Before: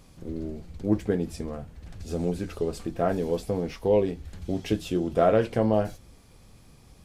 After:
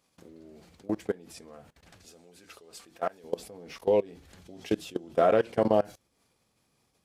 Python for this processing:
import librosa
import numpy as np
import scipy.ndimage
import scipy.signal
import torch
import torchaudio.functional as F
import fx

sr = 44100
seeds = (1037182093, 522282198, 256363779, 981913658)

y = fx.level_steps(x, sr, step_db=23)
y = fx.highpass(y, sr, hz=fx.steps((0.0, 590.0), (2.05, 1400.0), (3.24, 350.0)), slope=6)
y = F.gain(torch.from_numpy(y), 4.0).numpy()